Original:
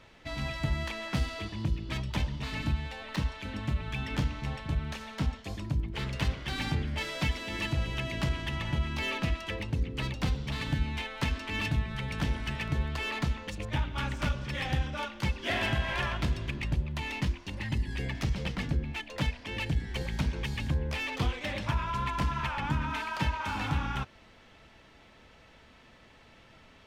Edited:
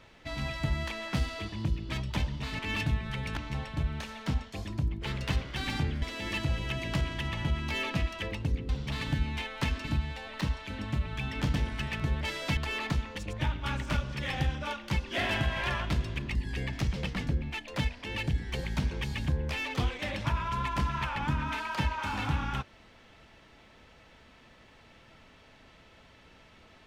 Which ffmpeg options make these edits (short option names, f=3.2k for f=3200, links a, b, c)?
-filter_complex "[0:a]asplit=10[a][b][c][d][e][f][g][h][i][j];[a]atrim=end=2.592[k];[b]atrim=start=11.438:end=12.222[l];[c]atrim=start=4.288:end=6.942[m];[d]atrim=start=7.298:end=9.972[n];[e]atrim=start=10.288:end=11.442[o];[f]atrim=start=2.588:end=4.292[p];[g]atrim=start=12.218:end=12.892[q];[h]atrim=start=6.938:end=7.302[r];[i]atrim=start=12.888:end=16.672[s];[j]atrim=start=17.768[t];[k][l]acrossfade=d=0.004:c1=hsin:c2=hsin[u];[u][m]acrossfade=d=0.004:c1=hsin:c2=hsin[v];[v][n]acrossfade=d=0.004:c1=hsin:c2=hsin[w];[w][o]acrossfade=d=0.004:c1=hsin:c2=hsin[x];[x][p]acrossfade=d=0.004:c1=hsin:c2=hsin[y];[y][q]acrossfade=d=0.004:c1=hsin:c2=hsin[z];[z][r]acrossfade=d=0.004:c1=hsin:c2=hsin[aa];[aa][s]acrossfade=d=0.004:c1=hsin:c2=hsin[ab];[ab][t]acrossfade=d=0.004:c1=hsin:c2=hsin"